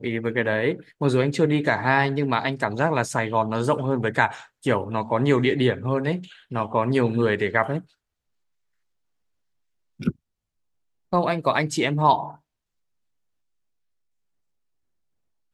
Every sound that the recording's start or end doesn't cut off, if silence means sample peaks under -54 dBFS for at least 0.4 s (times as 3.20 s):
9.99–10.16 s
11.12–12.39 s